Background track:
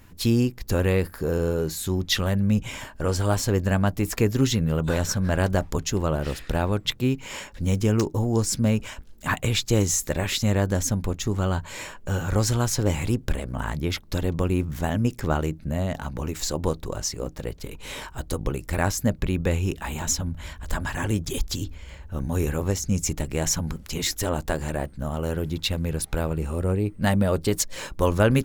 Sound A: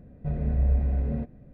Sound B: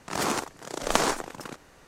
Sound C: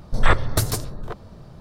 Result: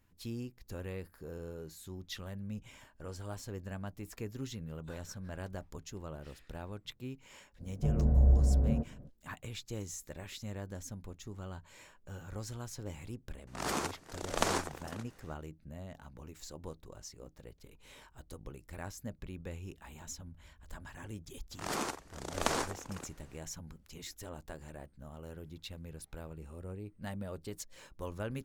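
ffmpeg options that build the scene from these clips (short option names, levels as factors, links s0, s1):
-filter_complex "[2:a]asplit=2[s0][s1];[0:a]volume=0.1[s2];[1:a]lowpass=f=1300:w=0.5412,lowpass=f=1300:w=1.3066,atrim=end=1.53,asetpts=PTS-STARTPTS,volume=0.891,afade=t=in:d=0.05,afade=t=out:st=1.48:d=0.05,adelay=7580[s3];[s0]atrim=end=1.87,asetpts=PTS-STARTPTS,volume=0.422,afade=t=in:d=0.004:c=hsin,afade=t=out:st=1.866:d=0.004:c=hsin,adelay=13470[s4];[s1]atrim=end=1.87,asetpts=PTS-STARTPTS,volume=0.376,afade=t=in:d=0.004:c=hsin,afade=t=out:st=1.866:d=0.004:c=hsin,adelay=21510[s5];[s2][s3][s4][s5]amix=inputs=4:normalize=0"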